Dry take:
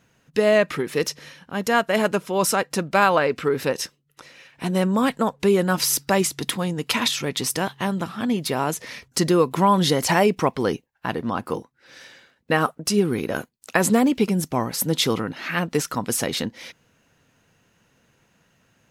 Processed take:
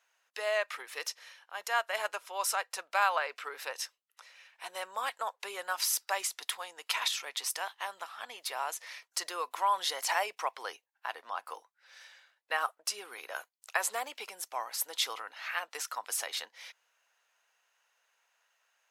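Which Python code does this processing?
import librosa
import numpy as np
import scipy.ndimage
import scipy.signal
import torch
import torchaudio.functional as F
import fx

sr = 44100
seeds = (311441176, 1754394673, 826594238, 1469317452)

y = scipy.signal.sosfilt(scipy.signal.butter(4, 710.0, 'highpass', fs=sr, output='sos'), x)
y = y * librosa.db_to_amplitude(-8.5)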